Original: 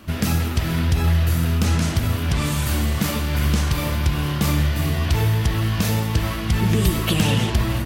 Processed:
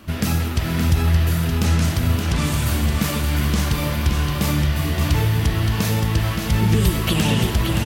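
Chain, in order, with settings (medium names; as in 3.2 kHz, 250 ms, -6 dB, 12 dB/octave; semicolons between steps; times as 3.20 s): delay 571 ms -6 dB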